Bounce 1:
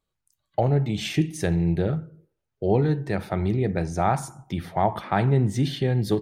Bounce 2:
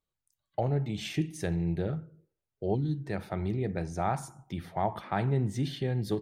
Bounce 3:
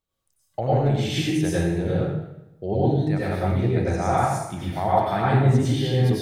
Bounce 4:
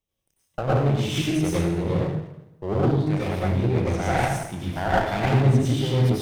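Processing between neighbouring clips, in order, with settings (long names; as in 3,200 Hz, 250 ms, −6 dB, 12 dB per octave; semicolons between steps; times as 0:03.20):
gain on a spectral selection 0:02.75–0:03.06, 370–2,900 Hz −18 dB; level −7.5 dB
convolution reverb RT60 0.90 s, pre-delay 85 ms, DRR −7.5 dB; level +2 dB
lower of the sound and its delayed copy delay 0.33 ms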